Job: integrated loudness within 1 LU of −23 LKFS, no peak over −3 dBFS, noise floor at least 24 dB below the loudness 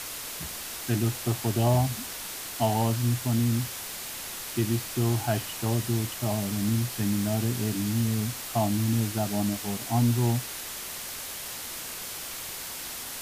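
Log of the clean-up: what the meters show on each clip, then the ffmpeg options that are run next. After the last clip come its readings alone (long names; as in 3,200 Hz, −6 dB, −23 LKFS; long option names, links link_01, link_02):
background noise floor −38 dBFS; target noise floor −53 dBFS; integrated loudness −28.5 LKFS; sample peak −12.5 dBFS; target loudness −23.0 LKFS
→ -af "afftdn=noise_reduction=15:noise_floor=-38"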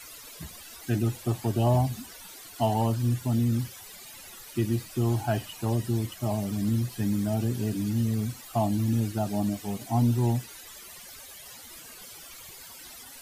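background noise floor −46 dBFS; target noise floor −52 dBFS
→ -af "afftdn=noise_reduction=6:noise_floor=-46"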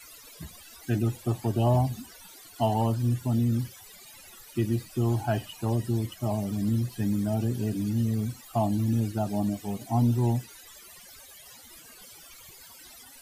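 background noise floor −50 dBFS; target noise floor −52 dBFS
→ -af "afftdn=noise_reduction=6:noise_floor=-50"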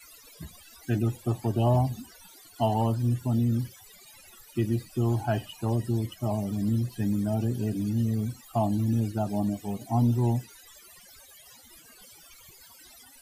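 background noise floor −53 dBFS; integrated loudness −28.0 LKFS; sample peak −13.0 dBFS; target loudness −23.0 LKFS
→ -af "volume=5dB"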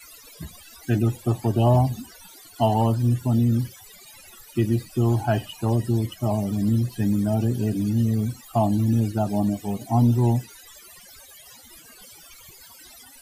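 integrated loudness −23.0 LKFS; sample peak −8.0 dBFS; background noise floor −48 dBFS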